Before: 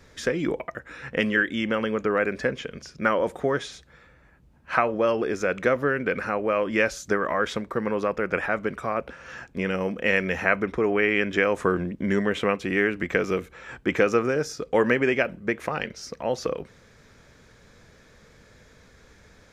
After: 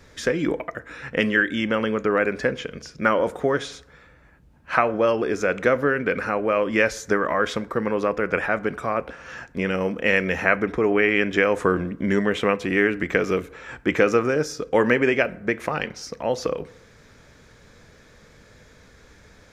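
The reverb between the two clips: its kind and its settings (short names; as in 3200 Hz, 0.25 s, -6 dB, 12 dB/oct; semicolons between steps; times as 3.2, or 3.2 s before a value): FDN reverb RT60 0.8 s, low-frequency decay 0.8×, high-frequency decay 0.5×, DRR 16.5 dB; gain +2.5 dB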